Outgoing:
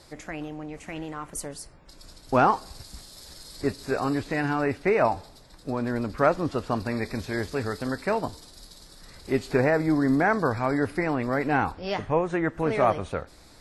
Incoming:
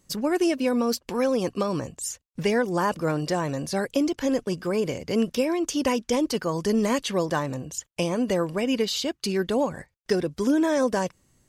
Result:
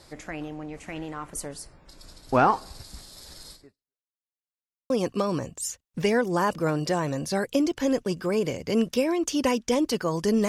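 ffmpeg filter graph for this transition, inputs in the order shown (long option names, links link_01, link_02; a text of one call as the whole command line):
ffmpeg -i cue0.wav -i cue1.wav -filter_complex "[0:a]apad=whole_dur=10.48,atrim=end=10.48,asplit=2[link_01][link_02];[link_01]atrim=end=4.05,asetpts=PTS-STARTPTS,afade=type=out:start_time=3.52:duration=0.53:curve=exp[link_03];[link_02]atrim=start=4.05:end=4.9,asetpts=PTS-STARTPTS,volume=0[link_04];[1:a]atrim=start=1.31:end=6.89,asetpts=PTS-STARTPTS,afade=type=in:duration=0.004:curve=hsin[link_05];[link_03][link_04][link_05]concat=n=3:v=0:a=1" out.wav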